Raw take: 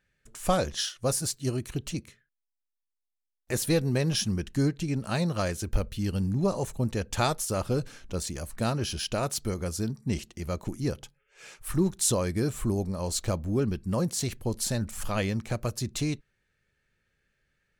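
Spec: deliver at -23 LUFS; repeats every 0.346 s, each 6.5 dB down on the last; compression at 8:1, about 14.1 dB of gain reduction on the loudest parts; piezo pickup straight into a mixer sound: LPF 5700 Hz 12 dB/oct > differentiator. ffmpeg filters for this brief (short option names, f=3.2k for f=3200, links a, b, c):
-af "acompressor=threshold=-35dB:ratio=8,lowpass=5.7k,aderivative,aecho=1:1:346|692|1038|1384|1730|2076:0.473|0.222|0.105|0.0491|0.0231|0.0109,volume=27.5dB"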